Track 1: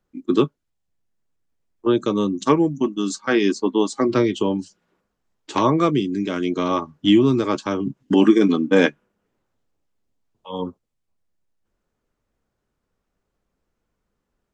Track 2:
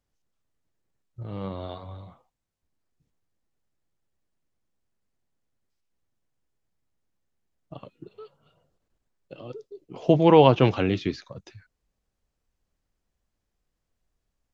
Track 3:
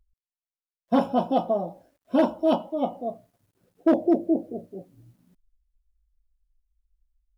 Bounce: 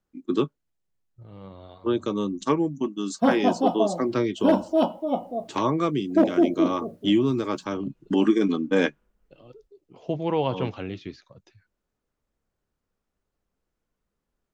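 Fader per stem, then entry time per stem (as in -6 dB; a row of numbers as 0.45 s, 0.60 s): -6.0 dB, -9.5 dB, +0.5 dB; 0.00 s, 0.00 s, 2.30 s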